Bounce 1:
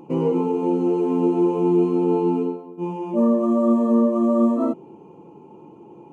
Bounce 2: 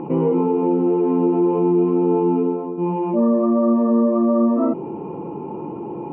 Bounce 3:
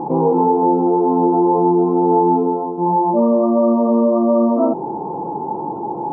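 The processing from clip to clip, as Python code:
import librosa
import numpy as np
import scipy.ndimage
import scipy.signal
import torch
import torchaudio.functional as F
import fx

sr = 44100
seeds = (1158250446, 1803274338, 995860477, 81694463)

y1 = scipy.signal.sosfilt(scipy.signal.butter(4, 2300.0, 'lowpass', fs=sr, output='sos'), x)
y1 = fx.env_flatten(y1, sr, amount_pct=50)
y2 = fx.lowpass_res(y1, sr, hz=830.0, q=4.9)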